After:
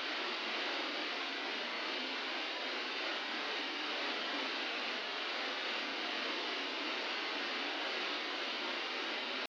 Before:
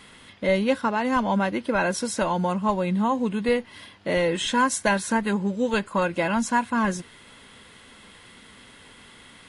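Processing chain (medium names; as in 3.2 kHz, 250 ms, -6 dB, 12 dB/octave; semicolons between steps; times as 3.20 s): spectral contrast reduction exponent 0.3; steep high-pass 170 Hz 96 dB/octave; in parallel at +2 dB: compression, threshold -38 dBFS, peak gain reduction 20 dB; on the sum: pitch shift +6 st; inverse Chebyshev low-pass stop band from 7.6 kHz, stop band 40 dB; Paulstretch 7.2×, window 0.05 s, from 7.48 s; trim +8 dB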